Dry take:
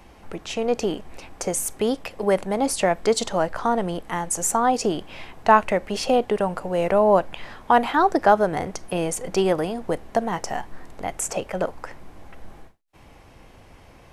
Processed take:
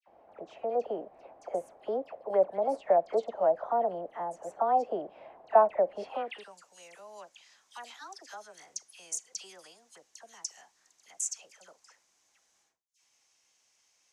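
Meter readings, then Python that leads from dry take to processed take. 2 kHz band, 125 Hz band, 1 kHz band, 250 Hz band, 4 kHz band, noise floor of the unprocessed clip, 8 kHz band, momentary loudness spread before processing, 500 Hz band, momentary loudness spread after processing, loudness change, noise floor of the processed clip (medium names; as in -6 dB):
-19.0 dB, under -25 dB, -10.0 dB, -20.5 dB, -16.0 dB, -49 dBFS, -11.0 dB, 14 LU, -8.0 dB, 22 LU, -8.0 dB, -72 dBFS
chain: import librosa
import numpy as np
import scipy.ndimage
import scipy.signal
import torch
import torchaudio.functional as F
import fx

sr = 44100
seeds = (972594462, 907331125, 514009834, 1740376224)

y = fx.filter_sweep_bandpass(x, sr, from_hz=640.0, to_hz=6400.0, start_s=5.99, end_s=6.51, q=3.6)
y = fx.dispersion(y, sr, late='lows', ms=76.0, hz=1800.0)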